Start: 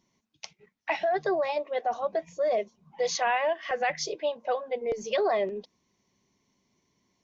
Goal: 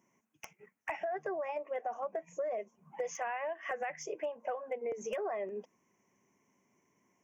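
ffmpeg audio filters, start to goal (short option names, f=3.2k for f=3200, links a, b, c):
-af "highpass=94,lowshelf=f=180:g=-9.5,acompressor=threshold=-36dB:ratio=10,asoftclip=type=hard:threshold=-30dB,asuperstop=centerf=4100:order=4:qfactor=1,volume=2.5dB"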